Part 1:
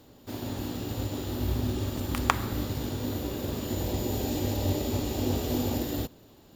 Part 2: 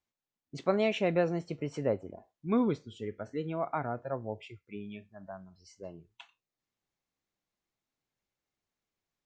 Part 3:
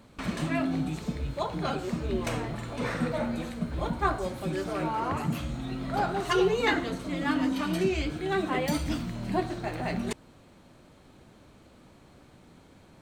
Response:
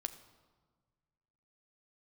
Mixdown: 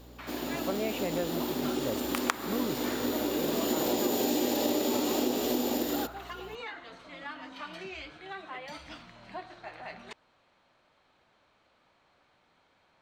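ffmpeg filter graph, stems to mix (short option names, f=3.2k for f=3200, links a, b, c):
-filter_complex "[0:a]highpass=f=240:w=0.5412,highpass=f=240:w=1.3066,dynaudnorm=f=100:g=31:m=11dB,aeval=exprs='val(0)+0.00224*(sin(2*PI*60*n/s)+sin(2*PI*2*60*n/s)/2+sin(2*PI*3*60*n/s)/3+sin(2*PI*4*60*n/s)/4+sin(2*PI*5*60*n/s)/5)':c=same,volume=2dB[a];[1:a]volume=-5dB[b];[2:a]acrossover=split=590 5300:gain=0.141 1 0.112[c][d][e];[c][d][e]amix=inputs=3:normalize=0,alimiter=level_in=0.5dB:limit=-24dB:level=0:latency=1:release=306,volume=-0.5dB,volume=-5.5dB[f];[a][b][f]amix=inputs=3:normalize=0,acompressor=threshold=-25dB:ratio=6"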